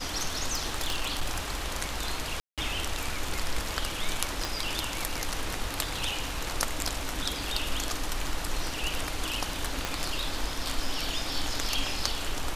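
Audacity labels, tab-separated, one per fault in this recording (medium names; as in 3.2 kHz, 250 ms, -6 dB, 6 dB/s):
0.530000	1.550000	clipped -22.5 dBFS
2.400000	2.580000	dropout 177 ms
4.450000	4.450000	pop
9.850000	9.850000	pop -13 dBFS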